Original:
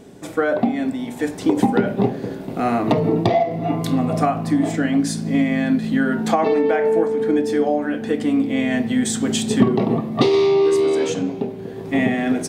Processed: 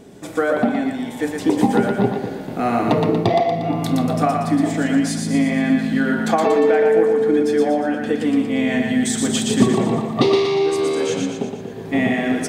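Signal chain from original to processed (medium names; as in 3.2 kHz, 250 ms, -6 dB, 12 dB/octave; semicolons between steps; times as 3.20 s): thinning echo 118 ms, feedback 52%, high-pass 490 Hz, level -3 dB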